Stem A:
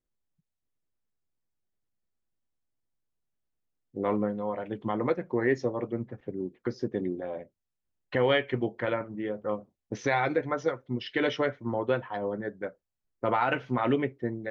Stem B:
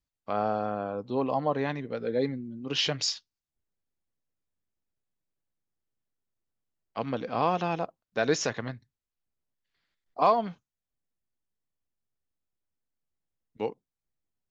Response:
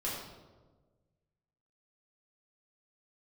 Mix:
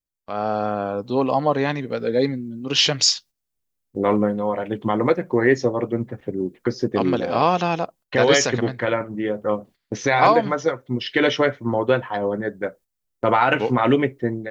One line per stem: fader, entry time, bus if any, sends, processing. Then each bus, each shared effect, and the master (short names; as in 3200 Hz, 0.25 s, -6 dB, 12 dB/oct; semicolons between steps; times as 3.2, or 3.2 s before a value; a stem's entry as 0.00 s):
+0.5 dB, 0.00 s, no send, dry
-0.5 dB, 0.00 s, no send, dry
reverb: off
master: gate -53 dBFS, range -10 dB; high shelf 5400 Hz +9.5 dB; AGC gain up to 8.5 dB